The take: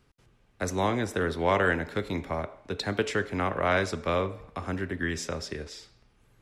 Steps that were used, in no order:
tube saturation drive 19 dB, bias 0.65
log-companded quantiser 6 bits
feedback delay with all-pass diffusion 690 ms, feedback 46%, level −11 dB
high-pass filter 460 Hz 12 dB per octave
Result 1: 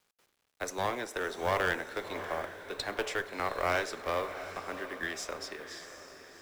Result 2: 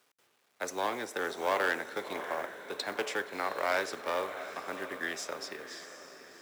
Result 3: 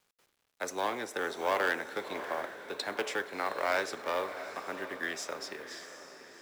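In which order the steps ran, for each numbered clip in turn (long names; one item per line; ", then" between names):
high-pass filter, then tube saturation, then feedback delay with all-pass diffusion, then log-companded quantiser
feedback delay with all-pass diffusion, then tube saturation, then log-companded quantiser, then high-pass filter
tube saturation, then high-pass filter, then log-companded quantiser, then feedback delay with all-pass diffusion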